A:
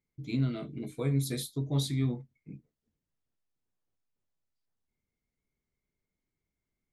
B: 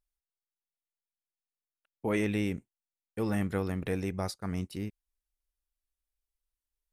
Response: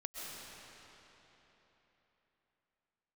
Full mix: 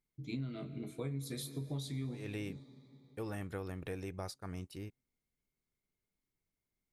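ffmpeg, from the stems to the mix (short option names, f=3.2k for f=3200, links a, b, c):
-filter_complex "[0:a]highpass=52,volume=-5dB,asplit=3[a][b][c];[b]volume=-12.5dB[d];[1:a]equalizer=f=210:t=o:w=0.41:g=-8.5,bandreject=f=2k:w=18,volume=-6.5dB[e];[c]apad=whole_len=305390[f];[e][f]sidechaincompress=threshold=-53dB:ratio=8:attack=43:release=125[g];[2:a]atrim=start_sample=2205[h];[d][h]afir=irnorm=-1:irlink=0[i];[a][g][i]amix=inputs=3:normalize=0,acompressor=threshold=-36dB:ratio=6"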